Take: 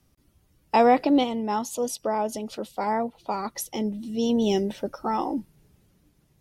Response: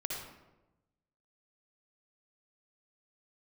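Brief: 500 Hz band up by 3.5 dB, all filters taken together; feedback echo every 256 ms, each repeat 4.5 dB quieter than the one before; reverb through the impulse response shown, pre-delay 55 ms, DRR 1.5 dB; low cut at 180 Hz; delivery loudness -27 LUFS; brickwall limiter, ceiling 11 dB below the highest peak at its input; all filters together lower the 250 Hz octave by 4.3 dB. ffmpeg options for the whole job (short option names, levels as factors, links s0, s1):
-filter_complex "[0:a]highpass=180,equalizer=f=250:t=o:g=-5,equalizer=f=500:t=o:g=5.5,alimiter=limit=0.133:level=0:latency=1,aecho=1:1:256|512|768|1024|1280|1536|1792|2048|2304:0.596|0.357|0.214|0.129|0.0772|0.0463|0.0278|0.0167|0.01,asplit=2[s0][s1];[1:a]atrim=start_sample=2205,adelay=55[s2];[s1][s2]afir=irnorm=-1:irlink=0,volume=0.668[s3];[s0][s3]amix=inputs=2:normalize=0,volume=0.75"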